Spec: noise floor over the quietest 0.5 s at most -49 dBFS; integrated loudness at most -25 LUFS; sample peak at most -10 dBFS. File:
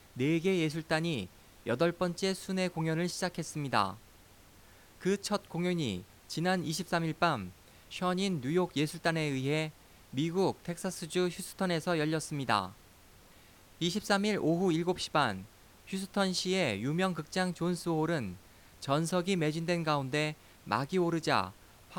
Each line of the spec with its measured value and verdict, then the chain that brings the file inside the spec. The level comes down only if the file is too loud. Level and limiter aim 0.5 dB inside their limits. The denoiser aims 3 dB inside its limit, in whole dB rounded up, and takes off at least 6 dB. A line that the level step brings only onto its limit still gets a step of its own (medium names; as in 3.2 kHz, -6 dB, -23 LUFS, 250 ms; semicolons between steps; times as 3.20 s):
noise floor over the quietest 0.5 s -58 dBFS: pass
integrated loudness -32.5 LUFS: pass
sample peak -13.0 dBFS: pass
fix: none needed